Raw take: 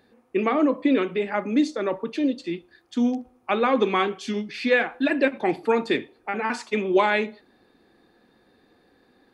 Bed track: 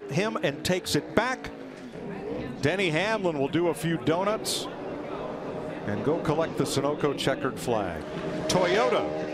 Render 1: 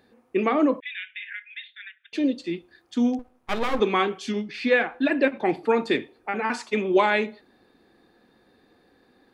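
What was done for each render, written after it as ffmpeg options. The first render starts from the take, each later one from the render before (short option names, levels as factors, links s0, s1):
-filter_complex "[0:a]asettb=1/sr,asplit=3[s0][s1][s2];[s0]atrim=end=0.804[s3];[s1]atrim=start=0.8:end=2.13,asetpts=PTS-STARTPTS,afade=t=in:d=0.004:c=qsin,afade=t=out:st=1.326:d=0.004:c=qsin,asuperpass=centerf=2400:order=20:qfactor=1.1[s4];[s2]atrim=start=2.126[s5];[s3][s4]acrossfade=d=0.004:c1=hsin:c2=qsin[s6];[s6][s5]acrossfade=d=0.004:c1=qsin:c2=hsin,asettb=1/sr,asplit=3[s7][s8][s9];[s7]atrim=end=3.194[s10];[s8]atrim=start=3.19:end=3.8,asetpts=PTS-STARTPTS,afade=t=in:d=0.004:c=qsin,afade=t=out:st=0.606:d=0.004:c=qsin,aeval=exprs='max(val(0),0)':c=same[s11];[s9]atrim=start=3.796[s12];[s10][s11]acrossfade=d=0.004:c1=hsin:c2=qsin[s13];[s13][s12]acrossfade=d=0.004:c1=qsin:c2=hsin,asettb=1/sr,asplit=3[s14][s15][s16];[s14]atrim=end=4.324[s17];[s15]atrim=start=4.32:end=5.79,asetpts=PTS-STARTPTS,afade=t=in:d=0.004:c=qsin,afade=t=out:st=1.466:d=0.004:c=qsin,highshelf=f=6500:g=-7.5[s18];[s16]atrim=start=5.786[s19];[s17][s18]acrossfade=d=0.004:c1=hsin:c2=qsin[s20];[s20][s19]acrossfade=d=0.004:c1=qsin:c2=hsin"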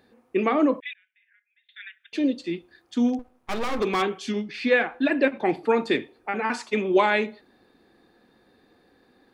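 -filter_complex "[0:a]asettb=1/sr,asplit=3[s0][s1][s2];[s0]atrim=end=0.934[s3];[s1]atrim=start=0.93:end=1.69,asetpts=PTS-STARTPTS,afade=t=in:d=0.004:c=qsin,afade=t=out:st=0.756:d=0.004:c=qsin,bandpass=f=450:t=q:w=5.3[s4];[s2]atrim=start=1.686[s5];[s3][s4]acrossfade=d=0.004:c1=hsin:c2=qsin[s6];[s6][s5]acrossfade=d=0.004:c1=qsin:c2=hsin,asplit=3[s7][s8][s9];[s7]afade=t=out:st=3.08:d=0.02[s10];[s8]asoftclip=type=hard:threshold=0.106,afade=t=in:st=3.08:d=0.02,afade=t=out:st=4.01:d=0.02[s11];[s9]afade=t=in:st=4.01:d=0.02[s12];[s10][s11][s12]amix=inputs=3:normalize=0"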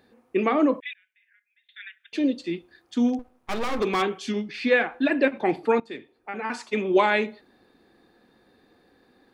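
-filter_complex "[0:a]asplit=2[s0][s1];[s0]atrim=end=5.8,asetpts=PTS-STARTPTS,afade=t=out:st=5.796:d=0.004:c=hsin:silence=0.105925[s2];[s1]atrim=start=5.8,asetpts=PTS-STARTPTS,afade=t=in:d=1.14:silence=0.105925[s3];[s2][s3]concat=n=2:v=0:a=1"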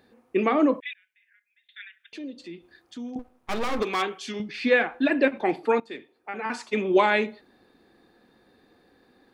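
-filter_complex "[0:a]asettb=1/sr,asplit=3[s0][s1][s2];[s0]atrim=end=1.844[s3];[s1]atrim=start=1.84:end=3.16,asetpts=PTS-STARTPTS,afade=t=in:d=0.004:c=qsin,afade=t=out:st=1.316:d=0.004:c=qsin,acompressor=threshold=0.00562:ratio=2:attack=3.2:release=140:knee=1:detection=peak[s4];[s2]atrim=start=3.156[s5];[s3][s4]acrossfade=d=0.004:c1=hsin:c2=qsin[s6];[s6][s5]acrossfade=d=0.004:c1=qsin:c2=hsin,asettb=1/sr,asplit=3[s7][s8][s9];[s7]atrim=end=3.834[s10];[s8]atrim=start=3.83:end=4.4,asetpts=PTS-STARTPTS,afade=t=in:d=0.004:c=qsin,afade=t=out:st=0.566:d=0.004:c=qsin,lowshelf=f=360:g=-11.5[s11];[s9]atrim=start=4.396[s12];[s10][s11]acrossfade=d=0.004:c1=hsin:c2=qsin[s13];[s13][s12]acrossfade=d=0.004:c1=qsin:c2=hsin,asettb=1/sr,asplit=3[s14][s15][s16];[s14]atrim=end=5.414[s17];[s15]atrim=start=5.41:end=6.46,asetpts=PTS-STARTPTS,afade=t=in:d=0.004:c=qsin,afade=t=out:st=1.046:d=0.004:c=qsin,highpass=f=230:p=1[s18];[s16]atrim=start=6.456[s19];[s17][s18]acrossfade=d=0.004:c1=hsin:c2=qsin[s20];[s20][s19]acrossfade=d=0.004:c1=qsin:c2=hsin"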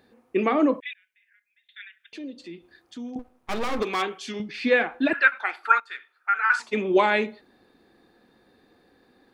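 -filter_complex "[0:a]asettb=1/sr,asplit=3[s0][s1][s2];[s0]atrim=end=5.134[s3];[s1]atrim=start=5.13:end=6.6,asetpts=PTS-STARTPTS,afade=t=in:d=0.004:c=qsin,afade=t=out:st=1.466:d=0.004:c=qsin,highpass=f=1400:t=q:w=9.8[s4];[s2]atrim=start=6.596[s5];[s3][s4]acrossfade=d=0.004:c1=hsin:c2=qsin[s6];[s6][s5]acrossfade=d=0.004:c1=qsin:c2=hsin"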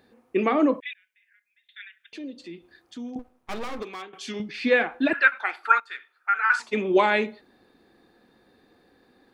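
-filter_complex "[0:a]asplit=2[s0][s1];[s0]atrim=end=4.13,asetpts=PTS-STARTPTS,afade=t=out:st=3.08:d=1.05:silence=0.141254[s2];[s1]atrim=start=4.13,asetpts=PTS-STARTPTS,afade=t=in:d=0.004:c=hsin:silence=0.141254[s3];[s2][s3]concat=n=2:v=0:a=1"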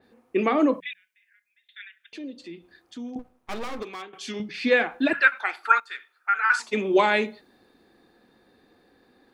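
-af "bandreject=f=60:t=h:w=6,bandreject=f=120:t=h:w=6,bandreject=f=180:t=h:w=6,adynamicequalizer=threshold=0.0126:dfrequency=4000:dqfactor=0.7:tfrequency=4000:tqfactor=0.7:attack=5:release=100:ratio=0.375:range=3:mode=boostabove:tftype=highshelf"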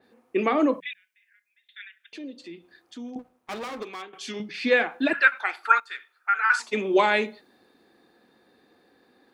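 -af "highpass=f=180:p=1"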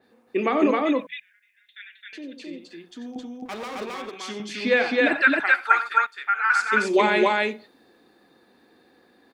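-af "aecho=1:1:90.38|265.3:0.282|0.891"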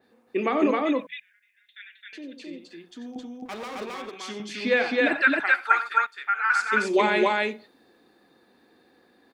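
-af "volume=0.794"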